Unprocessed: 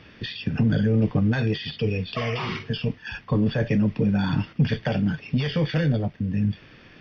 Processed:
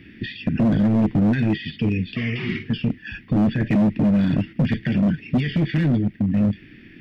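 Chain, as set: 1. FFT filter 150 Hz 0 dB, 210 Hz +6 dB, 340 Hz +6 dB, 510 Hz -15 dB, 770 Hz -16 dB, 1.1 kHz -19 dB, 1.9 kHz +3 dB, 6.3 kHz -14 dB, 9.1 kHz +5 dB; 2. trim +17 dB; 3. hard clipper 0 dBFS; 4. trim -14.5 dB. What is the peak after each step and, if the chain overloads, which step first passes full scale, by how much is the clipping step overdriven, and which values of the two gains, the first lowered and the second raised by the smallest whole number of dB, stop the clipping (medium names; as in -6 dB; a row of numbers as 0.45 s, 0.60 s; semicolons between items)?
-7.5 dBFS, +9.5 dBFS, 0.0 dBFS, -14.5 dBFS; step 2, 9.5 dB; step 2 +7 dB, step 4 -4.5 dB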